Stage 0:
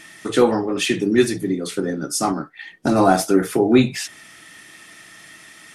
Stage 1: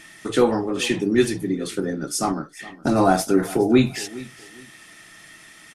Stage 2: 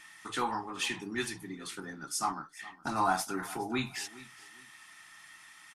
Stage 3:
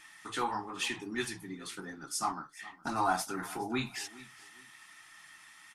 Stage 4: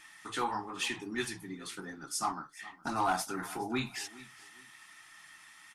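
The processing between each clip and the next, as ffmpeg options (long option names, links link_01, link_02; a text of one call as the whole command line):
ffmpeg -i in.wav -af "lowshelf=frequency=61:gain=9,aecho=1:1:416|832:0.112|0.0281,volume=-2.5dB" out.wav
ffmpeg -i in.wav -af "lowshelf=frequency=710:width_type=q:width=3:gain=-8.5,volume=-8.5dB" out.wav
ffmpeg -i in.wav -af "flanger=delay=2.4:depth=8.8:regen=-55:speed=0.99:shape=sinusoidal,volume=3dB" out.wav
ffmpeg -i in.wav -af "volume=23dB,asoftclip=hard,volume=-23dB" out.wav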